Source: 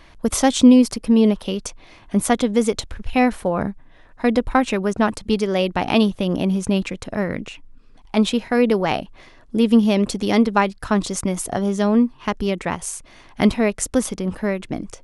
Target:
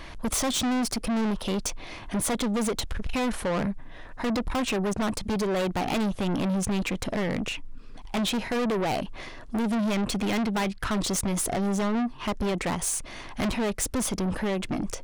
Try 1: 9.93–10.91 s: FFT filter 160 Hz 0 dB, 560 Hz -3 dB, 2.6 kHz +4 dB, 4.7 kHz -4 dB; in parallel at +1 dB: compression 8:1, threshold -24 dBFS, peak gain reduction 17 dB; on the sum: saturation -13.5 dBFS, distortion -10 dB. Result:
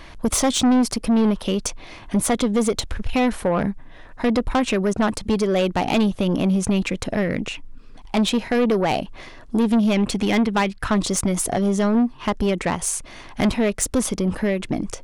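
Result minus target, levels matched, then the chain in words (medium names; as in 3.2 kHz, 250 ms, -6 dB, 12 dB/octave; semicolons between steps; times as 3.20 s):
saturation: distortion -6 dB
9.93–10.91 s: FFT filter 160 Hz 0 dB, 560 Hz -3 dB, 2.6 kHz +4 dB, 4.7 kHz -4 dB; in parallel at +1 dB: compression 8:1, threshold -24 dBFS, peak gain reduction 17 dB; on the sum: saturation -24 dBFS, distortion -3 dB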